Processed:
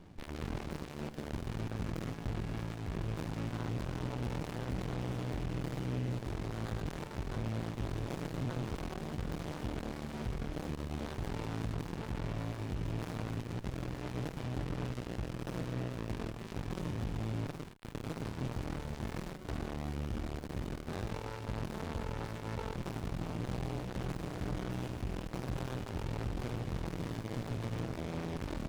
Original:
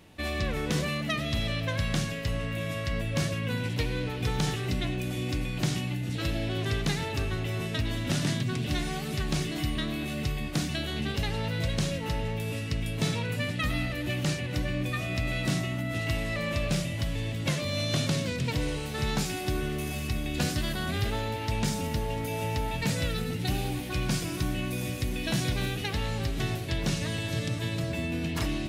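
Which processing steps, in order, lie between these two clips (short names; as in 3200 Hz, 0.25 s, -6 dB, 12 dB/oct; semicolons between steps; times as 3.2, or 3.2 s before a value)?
LPF 7000 Hz 12 dB/oct; notches 50/100/150/200/250 Hz; hard clip -34.5 dBFS, distortion -7 dB; on a send: echo 80 ms -14 dB; on the sum: running maximum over 65 samples; gain +2 dB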